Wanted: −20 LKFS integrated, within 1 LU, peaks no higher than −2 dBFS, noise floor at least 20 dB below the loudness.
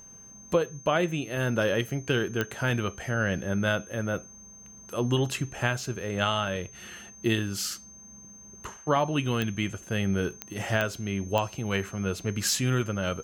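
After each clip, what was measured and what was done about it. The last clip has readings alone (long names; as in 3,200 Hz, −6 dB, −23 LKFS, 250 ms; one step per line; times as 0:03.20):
number of clicks 5; interfering tone 6,300 Hz; level of the tone −47 dBFS; integrated loudness −28.5 LKFS; sample peak −10.0 dBFS; target loudness −20.0 LKFS
→ click removal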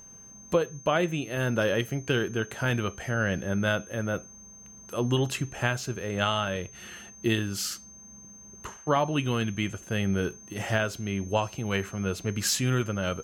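number of clicks 0; interfering tone 6,300 Hz; level of the tone −47 dBFS
→ notch filter 6,300 Hz, Q 30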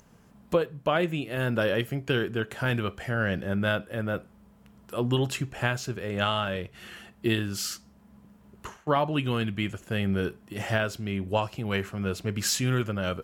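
interfering tone none found; integrated loudness −29.0 LKFS; sample peak −10.0 dBFS; target loudness −20.0 LKFS
→ level +9 dB
brickwall limiter −2 dBFS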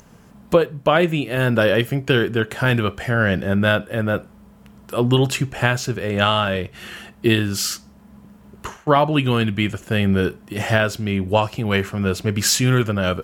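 integrated loudness −20.0 LKFS; sample peak −2.0 dBFS; background noise floor −48 dBFS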